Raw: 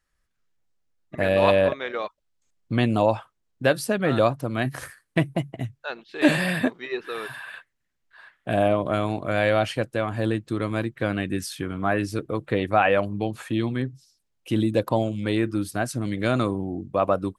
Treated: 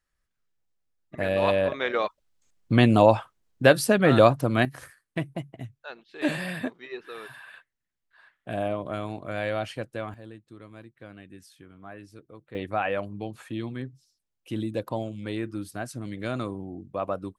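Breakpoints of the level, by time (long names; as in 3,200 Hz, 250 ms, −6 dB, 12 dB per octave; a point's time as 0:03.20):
−4.5 dB
from 0:01.74 +3.5 dB
from 0:04.65 −8 dB
from 0:10.14 −20 dB
from 0:12.55 −8 dB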